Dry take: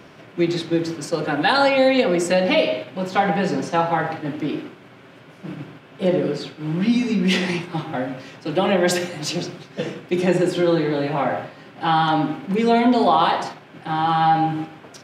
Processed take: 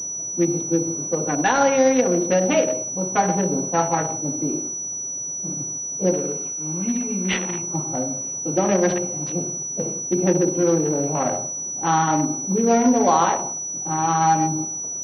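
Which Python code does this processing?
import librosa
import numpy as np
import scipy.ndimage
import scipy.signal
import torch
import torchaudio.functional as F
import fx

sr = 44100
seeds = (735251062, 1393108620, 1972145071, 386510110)

y = fx.wiener(x, sr, points=25)
y = fx.tilt_shelf(y, sr, db=-7.0, hz=900.0, at=(6.13, 7.62))
y = fx.pwm(y, sr, carrier_hz=5900.0)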